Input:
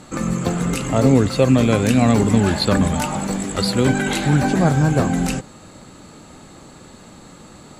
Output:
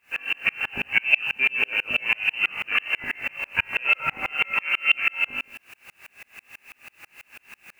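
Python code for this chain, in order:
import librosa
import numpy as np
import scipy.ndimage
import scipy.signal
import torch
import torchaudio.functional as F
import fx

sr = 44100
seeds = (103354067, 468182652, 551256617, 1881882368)

p1 = fx.hum_notches(x, sr, base_hz=50, count=4)
p2 = fx.comb_fb(p1, sr, f0_hz=52.0, decay_s=0.39, harmonics='all', damping=0.0, mix_pct=80)
p3 = p2 + fx.echo_single(p2, sr, ms=174, db=-15.0, dry=0)
p4 = fx.rider(p3, sr, range_db=4, speed_s=2.0)
p5 = fx.low_shelf(p4, sr, hz=160.0, db=-8.5)
p6 = fx.freq_invert(p5, sr, carrier_hz=2900)
p7 = fx.quant_dither(p6, sr, seeds[0], bits=8, dither='triangular')
p8 = p6 + (p7 * librosa.db_to_amplitude(-8.0))
p9 = fx.low_shelf(p8, sr, hz=75.0, db=-5.5)
p10 = fx.tremolo_decay(p9, sr, direction='swelling', hz=6.1, depth_db=34)
y = p10 * librosa.db_to_amplitude(7.0)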